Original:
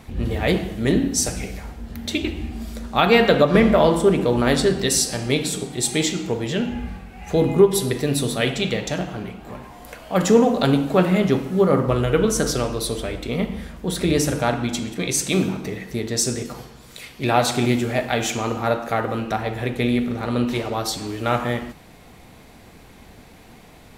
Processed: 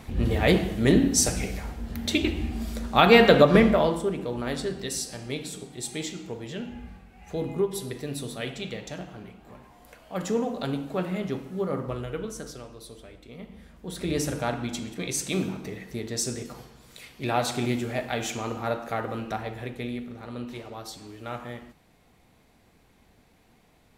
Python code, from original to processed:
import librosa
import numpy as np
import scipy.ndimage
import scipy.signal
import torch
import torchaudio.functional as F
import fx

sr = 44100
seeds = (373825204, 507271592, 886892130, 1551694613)

y = fx.gain(x, sr, db=fx.line((3.48, -0.5), (4.12, -12.0), (11.89, -12.0), (12.63, -19.5), (13.38, -19.5), (14.19, -7.5), (19.36, -7.5), (20.06, -14.5)))